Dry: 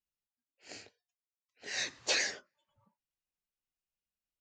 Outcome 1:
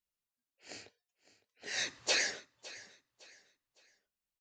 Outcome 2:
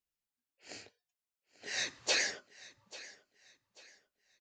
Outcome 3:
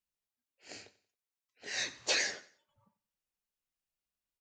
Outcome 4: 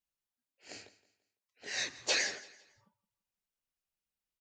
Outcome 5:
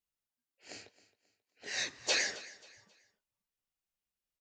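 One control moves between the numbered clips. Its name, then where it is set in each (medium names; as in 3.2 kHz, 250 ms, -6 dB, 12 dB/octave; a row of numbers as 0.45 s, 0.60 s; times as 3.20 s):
feedback delay, time: 559 ms, 840 ms, 91 ms, 168 ms, 268 ms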